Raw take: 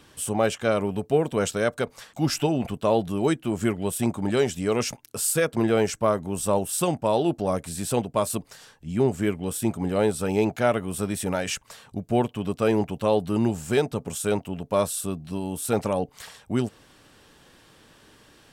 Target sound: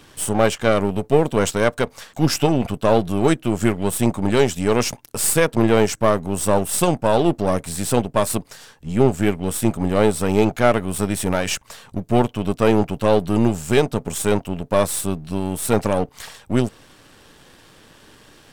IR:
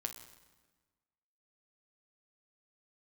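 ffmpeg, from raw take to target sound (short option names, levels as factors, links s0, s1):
-af "aeval=exprs='if(lt(val(0),0),0.447*val(0),val(0))':c=same,volume=2.51"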